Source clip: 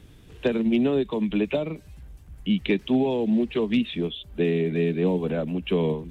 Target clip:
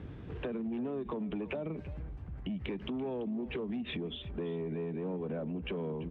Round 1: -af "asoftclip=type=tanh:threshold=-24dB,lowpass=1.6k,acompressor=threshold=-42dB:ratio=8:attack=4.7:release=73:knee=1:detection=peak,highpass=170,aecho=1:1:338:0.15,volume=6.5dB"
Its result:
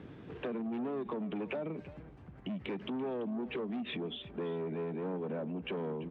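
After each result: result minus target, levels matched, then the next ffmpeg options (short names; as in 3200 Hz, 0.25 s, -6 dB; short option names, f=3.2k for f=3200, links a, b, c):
soft clip: distortion +7 dB; 125 Hz band -3.5 dB
-af "asoftclip=type=tanh:threshold=-17dB,lowpass=1.6k,acompressor=threshold=-42dB:ratio=8:attack=4.7:release=73:knee=1:detection=peak,highpass=170,aecho=1:1:338:0.15,volume=6.5dB"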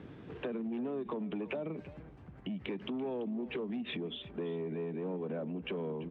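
125 Hz band -3.5 dB
-af "asoftclip=type=tanh:threshold=-17dB,lowpass=1.6k,acompressor=threshold=-42dB:ratio=8:attack=4.7:release=73:knee=1:detection=peak,highpass=58,aecho=1:1:338:0.15,volume=6.5dB"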